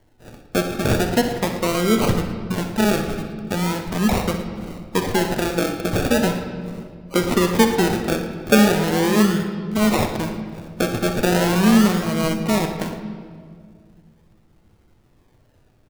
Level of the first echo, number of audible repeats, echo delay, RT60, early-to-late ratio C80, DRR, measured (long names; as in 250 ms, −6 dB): −12.0 dB, 2, 62 ms, 2.1 s, 8.5 dB, 4.0 dB